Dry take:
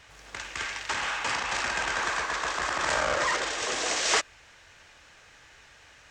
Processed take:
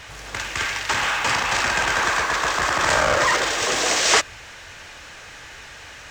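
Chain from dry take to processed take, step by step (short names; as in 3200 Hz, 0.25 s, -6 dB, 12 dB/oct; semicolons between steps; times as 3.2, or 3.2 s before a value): G.711 law mismatch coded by mu; dynamic EQ 110 Hz, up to +6 dB, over -58 dBFS, Q 1.4; gain +7 dB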